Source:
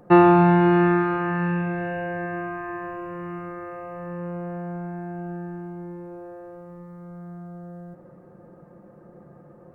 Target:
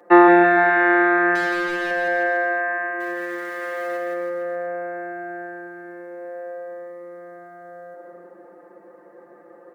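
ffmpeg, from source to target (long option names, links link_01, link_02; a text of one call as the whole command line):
ffmpeg -i in.wav -filter_complex "[0:a]asettb=1/sr,asplit=3[link_01][link_02][link_03];[link_01]atrim=end=3.004[link_04];[link_02]atrim=start=3:end=3.97,asetpts=PTS-STARTPTS,afade=type=in:duration=0.004:curve=qsin,afade=type=out:start_time=0.966:duration=0.004:curve=qsin,aeval=exprs='val(0)+0.5*0.00944*sgn(val(0))':channel_layout=same[link_05];[link_03]atrim=start=3.966[link_06];[link_04][link_05]acrossfade=duration=0.004:curve1=hsin:curve2=qsin[link_07];[link_07][link_06]acrossfade=duration=0.004:curve1=qsin:curve2=hsin,highpass=frequency=320:width=0.5412,highpass=frequency=320:width=1.3066,equalizer=frequency=1900:width=4.2:gain=11,aecho=1:1:5.8:0.56,asettb=1/sr,asplit=3[link_08][link_09][link_10];[link_08]atrim=end=1.354[link_11];[link_09]atrim=start=1.35:end=1.91,asetpts=PTS-STARTPTS,afade=type=in:duration=0.004:curve=qsin,afade=type=out:start_time=0.556:duration=0.004:curve=qsin,volume=26.5dB,asoftclip=hard,volume=-26.5dB[link_12];[link_10]atrim=start=1.906[link_13];[link_11][link_12]acrossfade=duration=0.004:curve1=hsin:curve2=qsin[link_14];[link_14][link_13]acrossfade=duration=0.004:curve1=qsin:curve2=hsin,aecho=1:1:170|323|460.7|584.6|696.2:0.631|0.398|0.251|0.158|0.1" out.wav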